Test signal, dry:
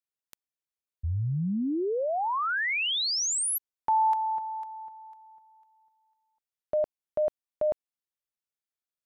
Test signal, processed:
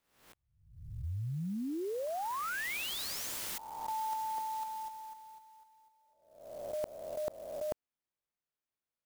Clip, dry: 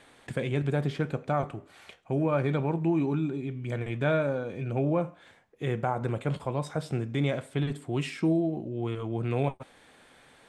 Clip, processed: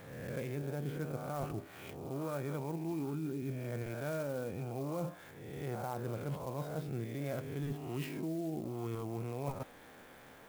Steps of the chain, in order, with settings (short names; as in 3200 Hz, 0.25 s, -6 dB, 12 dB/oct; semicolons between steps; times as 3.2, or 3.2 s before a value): spectral swells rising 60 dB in 0.68 s; high shelf 2900 Hz -10 dB; reverse; compressor 6:1, threshold -37 dBFS; reverse; clock jitter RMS 0.035 ms; gain +1 dB